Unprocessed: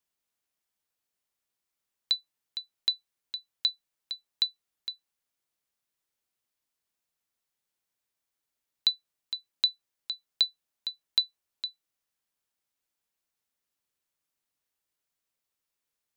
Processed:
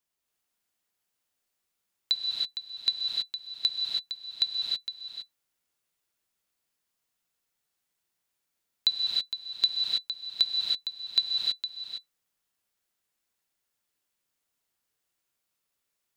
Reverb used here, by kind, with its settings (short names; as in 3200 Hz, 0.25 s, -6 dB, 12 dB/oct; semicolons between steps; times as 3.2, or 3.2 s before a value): non-linear reverb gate 0.35 s rising, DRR -2 dB